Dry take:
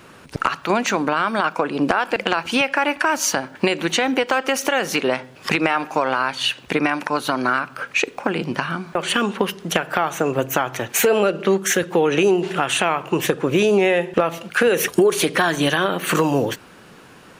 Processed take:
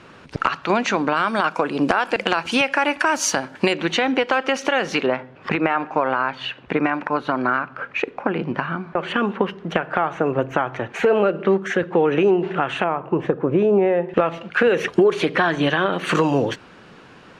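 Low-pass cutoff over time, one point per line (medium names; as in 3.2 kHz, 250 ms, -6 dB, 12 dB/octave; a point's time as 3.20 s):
5 kHz
from 1.15 s 9.5 kHz
from 3.73 s 4.2 kHz
from 5.06 s 2 kHz
from 12.84 s 1.1 kHz
from 14.09 s 2.9 kHz
from 15.93 s 4.8 kHz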